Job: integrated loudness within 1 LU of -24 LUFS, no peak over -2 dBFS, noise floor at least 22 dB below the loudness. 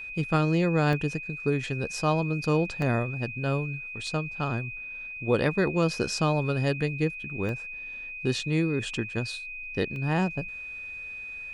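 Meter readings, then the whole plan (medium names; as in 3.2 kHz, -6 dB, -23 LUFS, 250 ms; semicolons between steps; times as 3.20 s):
dropouts 5; longest dropout 1.3 ms; steady tone 2.5 kHz; tone level -36 dBFS; loudness -28.5 LUFS; peak level -10.0 dBFS; loudness target -24.0 LUFS
-> interpolate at 0.93/2.82/4.07/7.49/9.96 s, 1.3 ms; band-stop 2.5 kHz, Q 30; trim +4.5 dB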